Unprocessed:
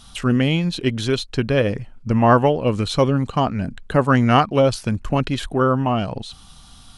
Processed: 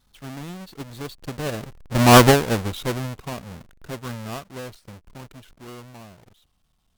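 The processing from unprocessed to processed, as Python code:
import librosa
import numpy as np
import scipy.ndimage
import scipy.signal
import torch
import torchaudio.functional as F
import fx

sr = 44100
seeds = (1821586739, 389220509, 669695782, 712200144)

y = fx.halfwave_hold(x, sr)
y = fx.doppler_pass(y, sr, speed_mps=25, closest_m=3.7, pass_at_s=2.19)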